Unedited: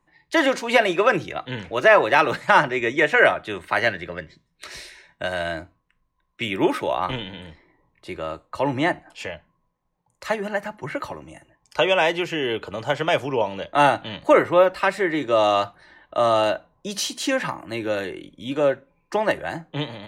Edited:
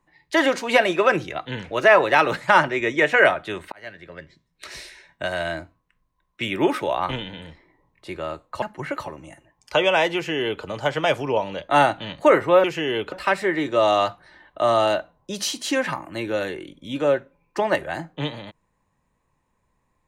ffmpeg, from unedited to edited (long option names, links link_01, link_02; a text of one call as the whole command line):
ffmpeg -i in.wav -filter_complex "[0:a]asplit=5[link_01][link_02][link_03][link_04][link_05];[link_01]atrim=end=3.72,asetpts=PTS-STARTPTS,afade=type=out:start_time=3.716:duration=0.004:curve=hsin[link_06];[link_02]atrim=start=3.72:end=8.622,asetpts=PTS-STARTPTS,afade=type=in:duration=0.98[link_07];[link_03]atrim=start=10.658:end=14.682[link_08];[link_04]atrim=start=12.188:end=12.672[link_09];[link_05]atrim=start=14.678[link_10];[link_06][link_07]concat=n=2:v=0:a=1[link_11];[link_11][link_08]acrossfade=duration=0.004:curve1=hsin:curve2=hsin[link_12];[link_12][link_09]acrossfade=duration=0.004:curve1=hsin:curve2=hsin[link_13];[link_13][link_10]acrossfade=duration=0.004:curve1=hsin:curve2=hsin" out.wav